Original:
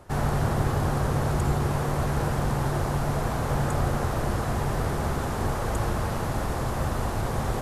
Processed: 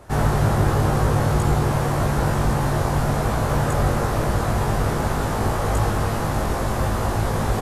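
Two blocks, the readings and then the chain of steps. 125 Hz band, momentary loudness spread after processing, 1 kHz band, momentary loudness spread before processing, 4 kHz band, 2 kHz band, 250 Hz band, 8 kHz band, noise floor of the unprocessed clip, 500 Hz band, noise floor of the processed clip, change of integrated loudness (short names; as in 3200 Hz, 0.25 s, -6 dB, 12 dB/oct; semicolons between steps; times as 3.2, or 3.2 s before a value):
+5.5 dB, 4 LU, +5.5 dB, 3 LU, +5.5 dB, +5.5 dB, +5.5 dB, +5.5 dB, -29 dBFS, +5.5 dB, -24 dBFS, +5.5 dB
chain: doubler 19 ms -2 dB; gain +3.5 dB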